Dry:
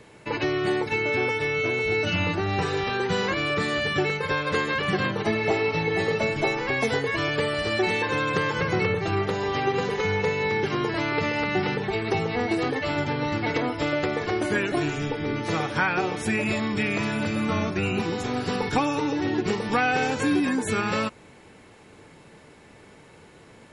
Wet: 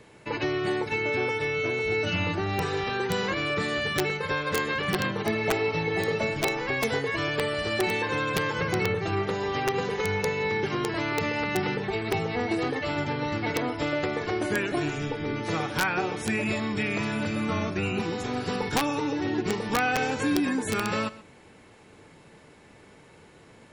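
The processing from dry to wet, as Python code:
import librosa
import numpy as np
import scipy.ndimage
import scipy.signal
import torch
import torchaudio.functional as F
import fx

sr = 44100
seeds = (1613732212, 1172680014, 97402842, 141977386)

y = x + 10.0 ** (-18.5 / 20.0) * np.pad(x, (int(127 * sr / 1000.0), 0))[:len(x)]
y = (np.mod(10.0 ** (13.5 / 20.0) * y + 1.0, 2.0) - 1.0) / 10.0 ** (13.5 / 20.0)
y = F.gain(torch.from_numpy(y), -2.5).numpy()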